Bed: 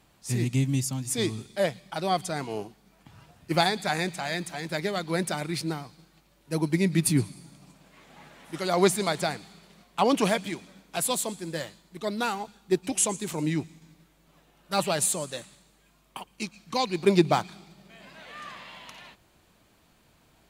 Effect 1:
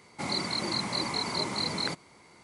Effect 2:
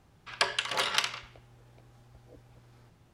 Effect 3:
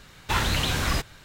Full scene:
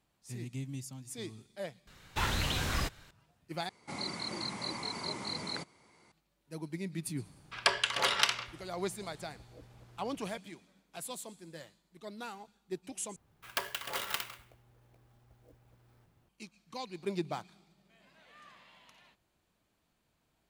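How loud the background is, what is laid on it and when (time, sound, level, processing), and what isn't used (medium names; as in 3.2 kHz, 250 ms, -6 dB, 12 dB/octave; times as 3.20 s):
bed -15 dB
1.87 s: replace with 3 -7.5 dB
3.69 s: replace with 1 -7.5 dB
7.25 s: add 2
13.16 s: replace with 2 -7.5 dB + sampling jitter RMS 0.034 ms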